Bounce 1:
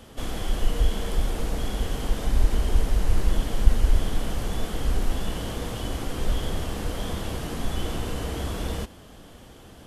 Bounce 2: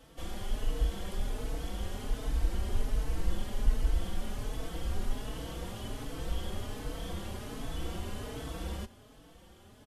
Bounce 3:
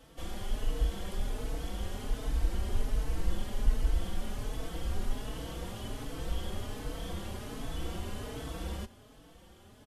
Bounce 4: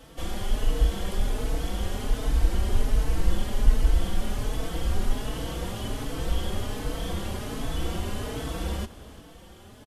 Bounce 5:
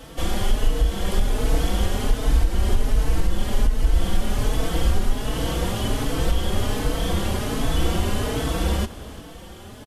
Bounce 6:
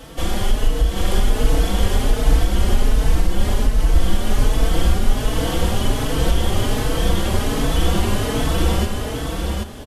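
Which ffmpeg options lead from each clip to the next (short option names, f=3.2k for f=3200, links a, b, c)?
-filter_complex "[0:a]asplit=2[a][b];[b]adelay=4.1,afreqshift=1.3[c];[a][c]amix=inputs=2:normalize=1,volume=-6dB"
-af anull
-af "aecho=1:1:357:0.126,volume=7.5dB"
-af "alimiter=limit=-17dB:level=0:latency=1:release=357,volume=8dB"
-af "aecho=1:1:781:0.668,volume=2.5dB"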